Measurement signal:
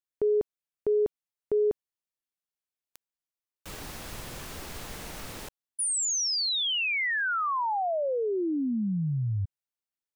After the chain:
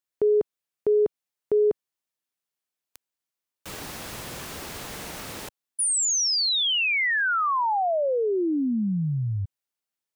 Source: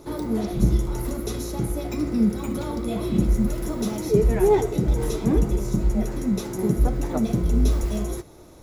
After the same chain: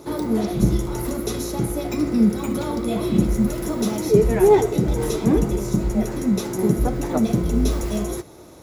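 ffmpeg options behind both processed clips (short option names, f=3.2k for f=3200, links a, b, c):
-af "highpass=f=110:p=1,volume=4.5dB"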